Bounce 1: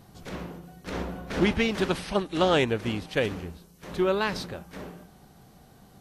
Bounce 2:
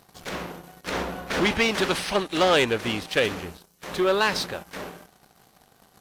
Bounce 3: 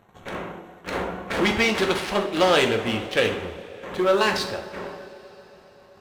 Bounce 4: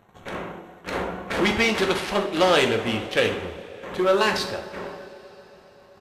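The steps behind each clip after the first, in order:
waveshaping leveller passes 2; bass shelf 360 Hz -12 dB; trim +1.5 dB
local Wiener filter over 9 samples; band-passed feedback delay 130 ms, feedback 84%, band-pass 540 Hz, level -18 dB; two-slope reverb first 0.53 s, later 4.7 s, from -21 dB, DRR 3 dB
resampled via 32 kHz

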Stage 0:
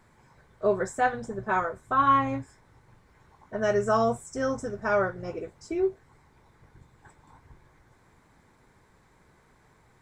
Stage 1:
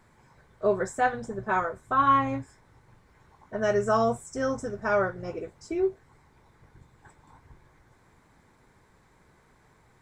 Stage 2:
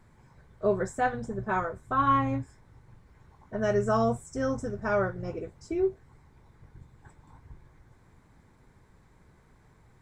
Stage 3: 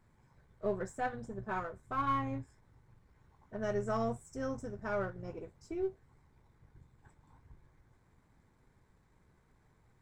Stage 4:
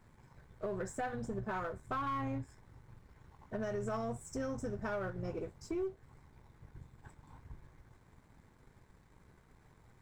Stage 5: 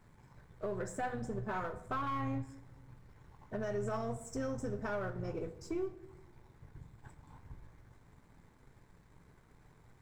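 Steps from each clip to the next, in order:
no audible change
bass shelf 240 Hz +9.5 dB; trim -3.5 dB
partial rectifier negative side -3 dB; trim -7.5 dB
peak limiter -28.5 dBFS, peak gain reduction 7 dB; compression 3:1, threshold -41 dBFS, peak gain reduction 7 dB; waveshaping leveller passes 1; trim +3 dB
reverberation RT60 1.0 s, pre-delay 7 ms, DRR 11 dB

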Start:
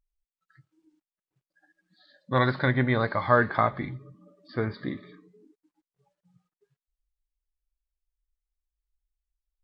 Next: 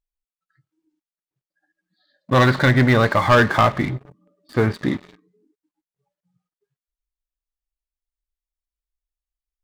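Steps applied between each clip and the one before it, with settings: waveshaping leveller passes 3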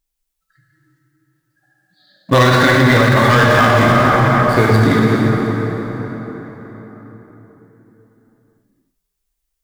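plate-style reverb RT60 4.7 s, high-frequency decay 0.55×, DRR -3.5 dB; peak limiter -10 dBFS, peak gain reduction 9.5 dB; treble shelf 4 kHz +8.5 dB; trim +6.5 dB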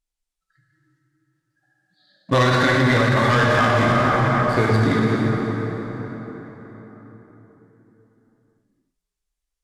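low-pass 9.1 kHz 12 dB/octave; trim -6 dB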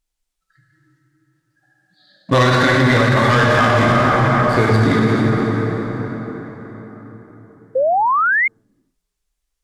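in parallel at +0.5 dB: peak limiter -16 dBFS, peak gain reduction 8 dB; on the sum: painted sound rise, 7.75–8.48 s, 500–2200 Hz -15 dBFS

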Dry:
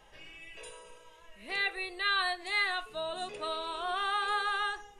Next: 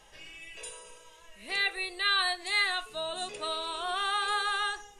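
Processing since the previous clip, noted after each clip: peaking EQ 7.7 kHz +9.5 dB 2 oct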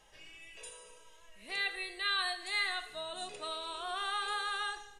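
feedback delay 79 ms, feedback 52%, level -16 dB; Schroeder reverb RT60 0.91 s, combs from 26 ms, DRR 14.5 dB; trim -6 dB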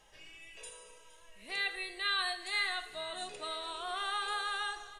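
feedback delay 465 ms, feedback 56%, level -18 dB

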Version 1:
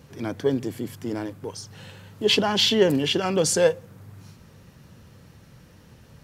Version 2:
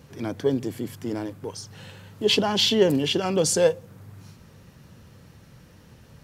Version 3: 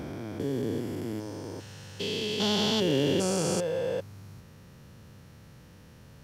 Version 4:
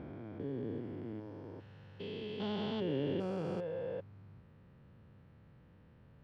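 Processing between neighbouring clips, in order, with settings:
dynamic bell 1.7 kHz, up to -4 dB, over -40 dBFS, Q 1.2
spectrogram pixelated in time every 400 ms
distance through air 440 m; trim -8.5 dB

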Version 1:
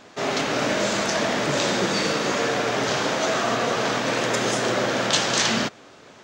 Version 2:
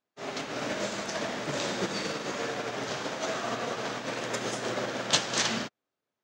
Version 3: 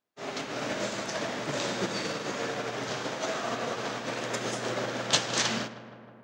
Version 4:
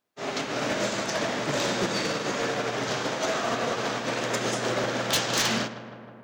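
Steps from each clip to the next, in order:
upward expansion 2.5:1, over -43 dBFS; trim -2 dB
filtered feedback delay 157 ms, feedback 74%, low-pass 2.3 kHz, level -14.5 dB
overload inside the chain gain 25 dB; trim +5 dB

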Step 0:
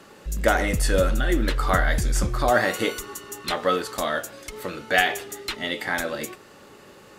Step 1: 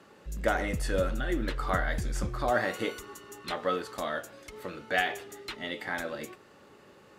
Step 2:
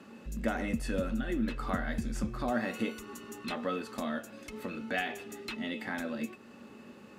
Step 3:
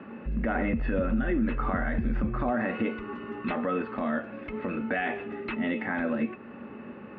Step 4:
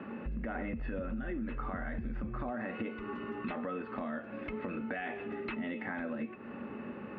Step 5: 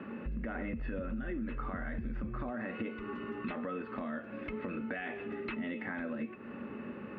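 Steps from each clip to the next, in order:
high-pass 43 Hz; treble shelf 4.7 kHz -7.5 dB; trim -7 dB
small resonant body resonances 230/2600 Hz, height 17 dB, ringing for 90 ms; compression 1.5:1, threshold -40 dBFS, peak gain reduction 8 dB
inverse Chebyshev low-pass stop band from 7.4 kHz, stop band 60 dB; peak limiter -27 dBFS, peak gain reduction 9.5 dB; trim +8.5 dB
compression 4:1, threshold -36 dBFS, peak gain reduction 11.5 dB
peaking EQ 780 Hz -4.5 dB 0.56 oct

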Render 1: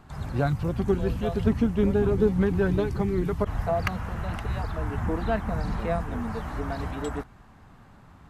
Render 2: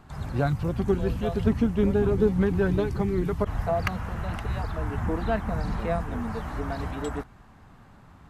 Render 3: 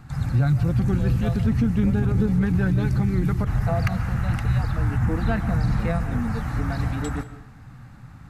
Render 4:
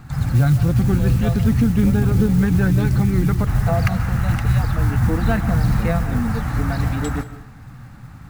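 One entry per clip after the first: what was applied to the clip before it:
no audible change
graphic EQ with 31 bands 125 Hz +12 dB, 400 Hz -12 dB, 630 Hz -9 dB, 1 kHz -8 dB, 3.15 kHz -6 dB; peak limiter -18.5 dBFS, peak gain reduction 8 dB; reverberation RT60 0.75 s, pre-delay 100 ms, DRR 13.5 dB; trim +5.5 dB
modulation noise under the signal 27 dB; trim +4.5 dB

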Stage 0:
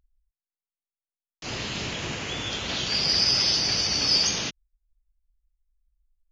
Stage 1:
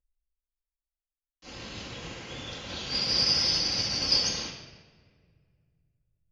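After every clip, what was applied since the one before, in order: reverberation RT60 2.1 s, pre-delay 4 ms, DRR -3 dB; upward expansion 1.5:1, over -40 dBFS; trim -7 dB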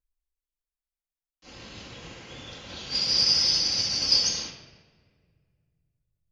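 dynamic bell 6.8 kHz, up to +8 dB, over -39 dBFS, Q 0.71; trim -3 dB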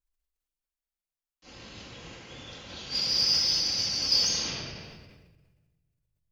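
in parallel at -11 dB: saturation -24.5 dBFS, distortion -9 dB; on the sum: decay stretcher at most 32 dB/s; trim -4.5 dB

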